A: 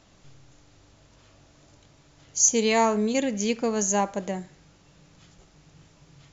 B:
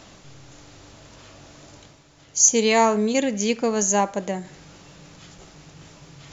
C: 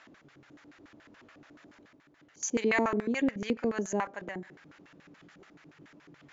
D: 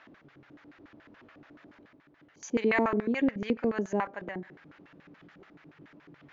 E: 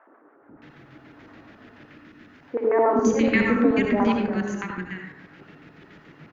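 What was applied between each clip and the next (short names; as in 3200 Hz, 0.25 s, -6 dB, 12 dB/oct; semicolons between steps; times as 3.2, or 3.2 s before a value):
low shelf 120 Hz -6.5 dB; reverse; upward compressor, threshold -41 dBFS; reverse; gain +4 dB
LFO band-pass square 7 Hz 300–1700 Hz
air absorption 190 m; gain +2 dB
three bands offset in time mids, lows, highs 0.42/0.62 s, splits 350/1300 Hz; on a send at -1.5 dB: reverb RT60 0.70 s, pre-delay 62 ms; on the sum: gain +7 dB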